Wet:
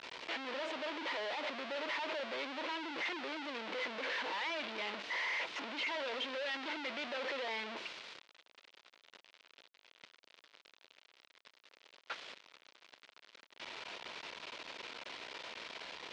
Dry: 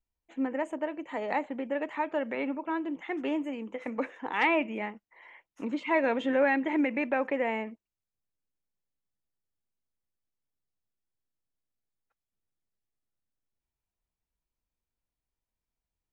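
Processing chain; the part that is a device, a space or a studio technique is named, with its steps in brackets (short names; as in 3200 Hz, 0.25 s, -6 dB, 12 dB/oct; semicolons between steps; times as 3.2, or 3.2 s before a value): home computer beeper (infinite clipping; speaker cabinet 580–4100 Hz, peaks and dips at 780 Hz -7 dB, 1200 Hz -4 dB, 1700 Hz -3 dB)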